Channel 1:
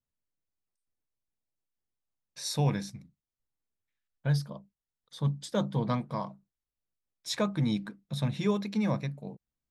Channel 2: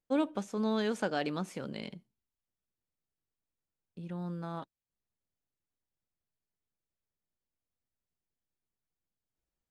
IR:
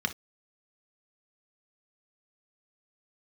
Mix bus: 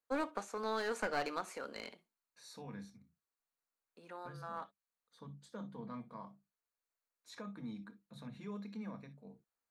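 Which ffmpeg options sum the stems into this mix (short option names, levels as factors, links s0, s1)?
-filter_complex "[0:a]alimiter=limit=0.0631:level=0:latency=1:release=31,volume=0.158,asplit=3[s0][s1][s2];[s1]volume=0.447[s3];[1:a]highpass=590,aeval=exprs='clip(val(0),-1,0.0112)':c=same,volume=1.12,asplit=2[s4][s5];[s5]volume=0.251[s6];[s2]apad=whole_len=428155[s7];[s4][s7]sidechaincompress=threshold=0.00398:ratio=8:attack=16:release=1280[s8];[2:a]atrim=start_sample=2205[s9];[s3][s6]amix=inputs=2:normalize=0[s10];[s10][s9]afir=irnorm=-1:irlink=0[s11];[s0][s8][s11]amix=inputs=3:normalize=0"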